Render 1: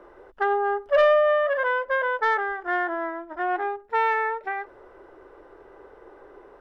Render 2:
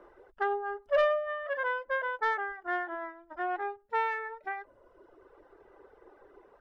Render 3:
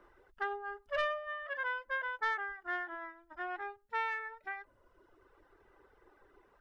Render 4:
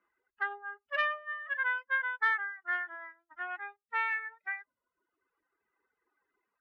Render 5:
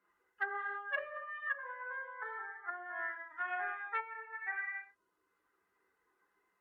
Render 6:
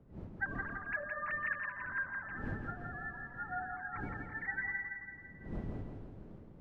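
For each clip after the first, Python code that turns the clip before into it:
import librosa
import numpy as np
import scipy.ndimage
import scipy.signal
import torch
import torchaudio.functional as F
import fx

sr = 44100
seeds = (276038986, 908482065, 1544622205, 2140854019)

y1 = fx.dereverb_blind(x, sr, rt60_s=1.1)
y1 = y1 * 10.0 ** (-6.0 / 20.0)
y2 = fx.peak_eq(y1, sr, hz=530.0, db=-11.5, octaves=1.9)
y3 = fx.bin_expand(y2, sr, power=1.5)
y3 = fx.bandpass_q(y3, sr, hz=1900.0, q=1.4)
y3 = y3 * 10.0 ** (8.5 / 20.0)
y4 = fx.rev_gated(y3, sr, seeds[0], gate_ms=350, shape='falling', drr_db=-4.5)
y4 = fx.env_lowpass_down(y4, sr, base_hz=590.0, full_db=-25.0)
y4 = fx.hpss(y4, sr, part='harmonic', gain_db=-3)
y5 = fx.sine_speech(y4, sr)
y5 = fx.dmg_wind(y5, sr, seeds[1], corner_hz=220.0, level_db=-47.0)
y5 = fx.echo_feedback(y5, sr, ms=167, feedback_pct=55, wet_db=-5.0)
y5 = y5 * 10.0 ** (-1.5 / 20.0)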